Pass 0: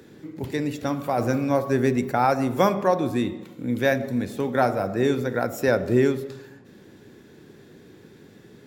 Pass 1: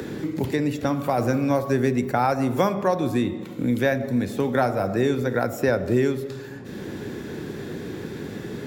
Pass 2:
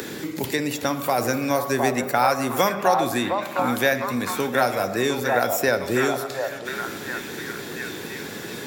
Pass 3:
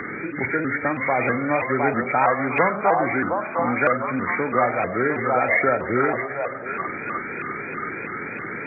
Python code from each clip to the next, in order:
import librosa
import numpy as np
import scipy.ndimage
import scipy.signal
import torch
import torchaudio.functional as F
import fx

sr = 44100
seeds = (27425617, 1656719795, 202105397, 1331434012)

y1 = fx.peak_eq(x, sr, hz=68.0, db=4.0, octaves=1.6)
y1 = fx.band_squash(y1, sr, depth_pct=70)
y2 = fx.tilt_eq(y1, sr, slope=3.0)
y2 = fx.echo_stepped(y2, sr, ms=710, hz=780.0, octaves=0.7, feedback_pct=70, wet_db=-1.5)
y2 = y2 * 10.0 ** (2.5 / 20.0)
y3 = fx.freq_compress(y2, sr, knee_hz=1200.0, ratio=4.0)
y3 = fx.vibrato_shape(y3, sr, shape='saw_up', rate_hz=3.1, depth_cents=160.0)